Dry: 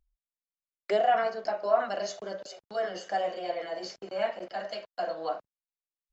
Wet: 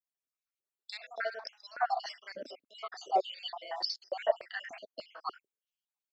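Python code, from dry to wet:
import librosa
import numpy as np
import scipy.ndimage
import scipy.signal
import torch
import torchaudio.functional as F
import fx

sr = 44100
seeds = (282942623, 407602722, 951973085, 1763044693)

y = fx.spec_dropout(x, sr, seeds[0], share_pct=58)
y = fx.filter_held_highpass(y, sr, hz=3.4, low_hz=260.0, high_hz=4500.0)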